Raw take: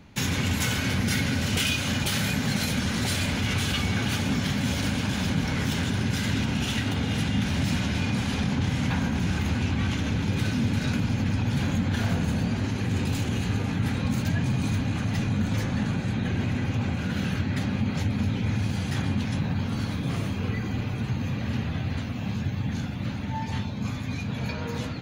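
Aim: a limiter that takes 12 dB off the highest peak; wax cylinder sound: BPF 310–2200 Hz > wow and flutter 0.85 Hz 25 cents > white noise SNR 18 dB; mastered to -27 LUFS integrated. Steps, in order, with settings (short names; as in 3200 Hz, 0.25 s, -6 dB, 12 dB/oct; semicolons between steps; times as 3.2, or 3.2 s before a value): limiter -25 dBFS; BPF 310–2200 Hz; wow and flutter 0.85 Hz 25 cents; white noise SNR 18 dB; gain +13 dB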